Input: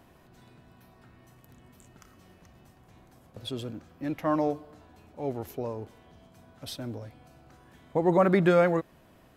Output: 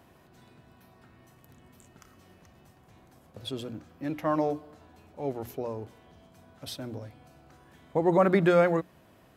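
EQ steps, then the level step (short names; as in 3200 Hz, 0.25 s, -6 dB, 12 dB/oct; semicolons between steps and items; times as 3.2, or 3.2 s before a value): HPF 46 Hz; notches 60/120/180/240/300 Hz; 0.0 dB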